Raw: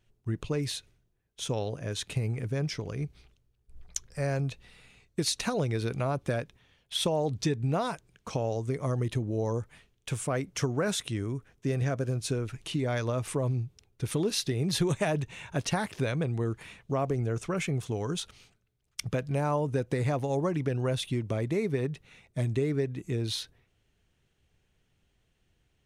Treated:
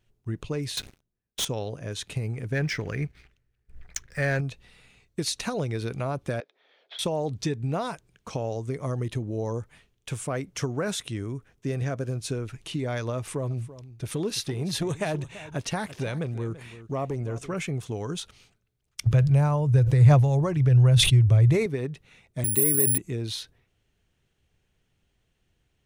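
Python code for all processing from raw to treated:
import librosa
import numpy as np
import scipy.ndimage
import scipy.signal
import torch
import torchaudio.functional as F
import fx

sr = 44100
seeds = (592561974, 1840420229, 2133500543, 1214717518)

y = fx.chain(x, sr, fx.peak_eq(hz=220.0, db=8.0, octaves=0.44),
    fx.leveller(passes=5), at=(0.77, 1.45))
y = fx.chain(y, sr, fx.median_filter(points=3),
    fx.curve_eq(hz=(1100.0, 1800.0, 3400.0), db=(0, 12, -1)),
    fx.leveller(passes=1), at=(2.52, 4.41))
y = fx.chain(y, sr, fx.cabinet(low_hz=400.0, low_slope=24, high_hz=4100.0, hz=(640.0, 1000.0, 1700.0, 2800.0), db=(4, -6, -4, -10)),
    fx.band_squash(depth_pct=100), at=(6.4, 6.99))
y = fx.chain(y, sr, fx.echo_single(ms=336, db=-16.0),
    fx.transformer_sat(knee_hz=340.0), at=(13.17, 17.54))
y = fx.chain(y, sr, fx.low_shelf_res(hz=160.0, db=9.5, q=3.0),
    fx.sustainer(db_per_s=46.0), at=(19.06, 21.66))
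y = fx.chain(y, sr, fx.highpass(hz=130.0, slope=12),
    fx.resample_bad(factor=4, down='none', up='zero_stuff'),
    fx.sustainer(db_per_s=25.0), at=(22.44, 22.98))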